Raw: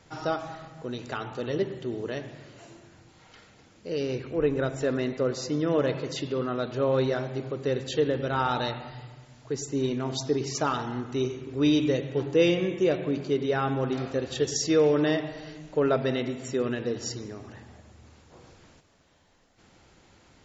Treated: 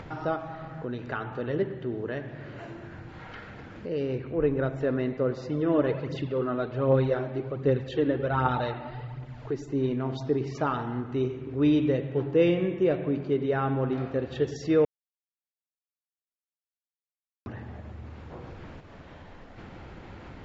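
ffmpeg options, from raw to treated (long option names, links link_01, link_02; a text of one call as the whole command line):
ffmpeg -i in.wav -filter_complex "[0:a]asettb=1/sr,asplit=3[link_01][link_02][link_03];[link_01]atrim=end=0.694[link_04];[link_02]atrim=start=0.69:end=3.89,asetpts=PTS-STARTPTS,afade=type=in:duration=0.004:curve=qsin,afade=type=out:start_time=3.196:duration=0.004:curve=qsin,equalizer=frequency=1600:width_type=o:width=0.41:gain=5.5[link_05];[link_03]atrim=start=3.886[link_06];[link_04][link_05]acrossfade=duration=0.004:curve1=hsin:curve2=qsin[link_07];[link_07][link_06]acrossfade=duration=0.004:curve1=qsin:curve2=hsin,asplit=3[link_08][link_09][link_10];[link_08]afade=type=out:start_time=5.49:duration=0.02[link_11];[link_09]aphaser=in_gain=1:out_gain=1:delay=3.6:decay=0.46:speed=1.3:type=triangular,afade=type=in:start_time=5.49:duration=0.02,afade=type=out:start_time=9.72:duration=0.02[link_12];[link_10]afade=type=in:start_time=9.72:duration=0.02[link_13];[link_11][link_12][link_13]amix=inputs=3:normalize=0,asplit=3[link_14][link_15][link_16];[link_14]atrim=end=14.85,asetpts=PTS-STARTPTS,afade=type=out:start_time=14.846:duration=0.004:curve=hsin[link_17];[link_15]atrim=start=14.85:end=17.46,asetpts=PTS-STARTPTS,volume=0[link_18];[link_16]atrim=start=17.46,asetpts=PTS-STARTPTS,afade=type=in:duration=0.004:curve=hsin[link_19];[link_17][link_18][link_19]concat=n=3:v=0:a=1,lowpass=2300,lowshelf=frequency=180:gain=4.5,acompressor=mode=upward:threshold=-30dB:ratio=2.5,volume=-1dB" out.wav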